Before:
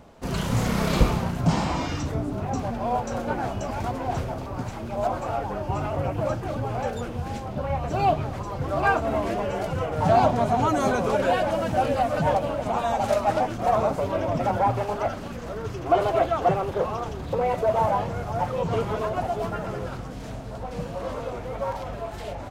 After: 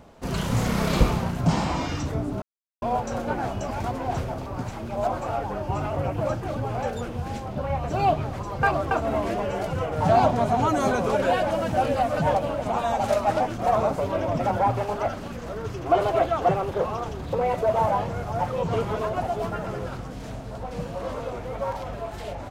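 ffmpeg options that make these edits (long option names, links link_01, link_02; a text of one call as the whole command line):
ffmpeg -i in.wav -filter_complex "[0:a]asplit=5[link_01][link_02][link_03][link_04][link_05];[link_01]atrim=end=2.42,asetpts=PTS-STARTPTS,afade=type=out:start_time=2.416:duration=0.004:curve=hsin[link_06];[link_02]atrim=start=2.42:end=2.82,asetpts=PTS-STARTPTS,volume=0[link_07];[link_03]atrim=start=2.82:end=8.632,asetpts=PTS-STARTPTS,afade=type=in:duration=0.004:curve=hsin[link_08];[link_04]atrim=start=8.628:end=8.912,asetpts=PTS-STARTPTS,areverse[link_09];[link_05]atrim=start=8.908[link_10];[link_06][link_07][link_08]concat=n=3:v=0:a=1[link_11];[link_11][link_09]acrossfade=duration=0.004:curve1=hsin:curve2=hsin[link_12];[link_12][link_10]acrossfade=duration=0.004:curve1=hsin:curve2=hsin" out.wav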